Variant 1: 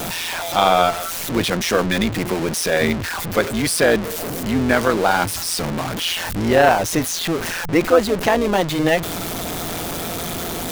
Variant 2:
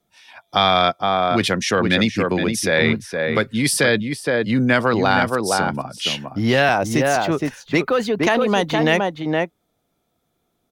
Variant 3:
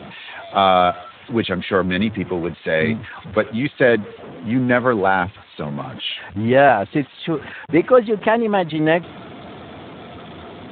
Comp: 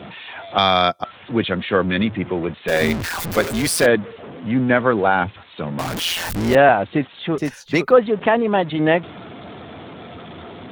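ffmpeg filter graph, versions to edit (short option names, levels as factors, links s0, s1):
-filter_complex "[1:a]asplit=2[s0][s1];[0:a]asplit=2[s2][s3];[2:a]asplit=5[s4][s5][s6][s7][s8];[s4]atrim=end=0.582[s9];[s0]atrim=start=0.578:end=1.042[s10];[s5]atrim=start=1.038:end=2.682[s11];[s2]atrim=start=2.678:end=3.862[s12];[s6]atrim=start=3.858:end=5.792[s13];[s3]atrim=start=5.788:end=6.552[s14];[s7]atrim=start=6.548:end=7.382[s15];[s1]atrim=start=7.378:end=7.912[s16];[s8]atrim=start=7.908[s17];[s9][s10]acrossfade=d=0.004:c1=hsin:c2=hsin[s18];[s18][s11]acrossfade=d=0.004:c1=hsin:c2=hsin[s19];[s19][s12]acrossfade=d=0.004:c1=hsin:c2=hsin[s20];[s20][s13]acrossfade=d=0.004:c1=hsin:c2=hsin[s21];[s21][s14]acrossfade=d=0.004:c1=hsin:c2=hsin[s22];[s22][s15]acrossfade=d=0.004:c1=hsin:c2=hsin[s23];[s23][s16]acrossfade=d=0.004:c1=hsin:c2=hsin[s24];[s24][s17]acrossfade=d=0.004:c1=hsin:c2=hsin"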